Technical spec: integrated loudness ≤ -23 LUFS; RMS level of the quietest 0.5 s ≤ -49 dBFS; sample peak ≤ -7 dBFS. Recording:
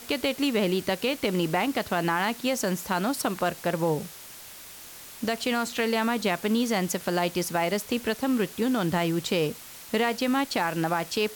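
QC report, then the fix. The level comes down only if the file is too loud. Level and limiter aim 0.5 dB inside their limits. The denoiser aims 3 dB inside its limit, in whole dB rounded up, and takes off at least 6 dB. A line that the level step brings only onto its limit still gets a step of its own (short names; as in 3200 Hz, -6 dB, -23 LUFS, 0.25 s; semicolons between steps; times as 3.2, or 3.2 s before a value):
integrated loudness -27.0 LUFS: OK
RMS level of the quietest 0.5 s -45 dBFS: fail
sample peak -13.0 dBFS: OK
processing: denoiser 7 dB, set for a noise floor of -45 dBFS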